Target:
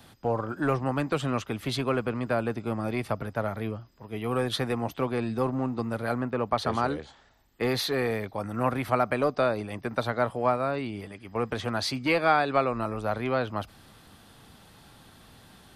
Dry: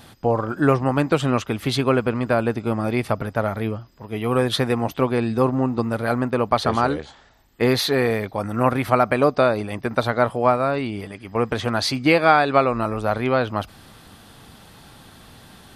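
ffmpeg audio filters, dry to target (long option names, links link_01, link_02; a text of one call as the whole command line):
ffmpeg -i in.wav -filter_complex "[0:a]asettb=1/sr,asplit=3[link_01][link_02][link_03];[link_01]atrim=end=6.154[link_04];[link_02]atrim=start=6.15:end=6.58,asetpts=PTS-STARTPTS,afade=type=in:duration=0.004:curve=qsin,afade=type=out:start_time=0.426:duration=0.004:curve=qsin,acrossover=split=3400[link_05][link_06];[link_06]acompressor=threshold=-59dB:ratio=4:attack=1:release=60[link_07];[link_05][link_07]amix=inputs=2:normalize=0[link_08];[link_03]atrim=start=6.576[link_09];[link_04][link_08]acrossfade=duration=0.004:curve1=hsin:curve2=qsin[link_10];[link_10][link_09]acrossfade=duration=0.004:curve1=qsin:curve2=hsin,acrossover=split=110|480|1900[link_11][link_12][link_13][link_14];[link_12]asoftclip=type=hard:threshold=-19dB[link_15];[link_11][link_15][link_13][link_14]amix=inputs=4:normalize=0,volume=-7dB" out.wav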